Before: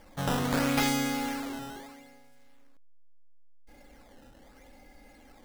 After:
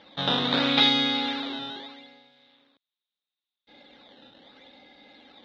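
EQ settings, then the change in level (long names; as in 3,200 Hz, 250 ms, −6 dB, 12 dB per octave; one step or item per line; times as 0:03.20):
high-pass filter 180 Hz 12 dB per octave
low-pass with resonance 3,700 Hz, resonance Q 13
high-frequency loss of the air 110 metres
+2.5 dB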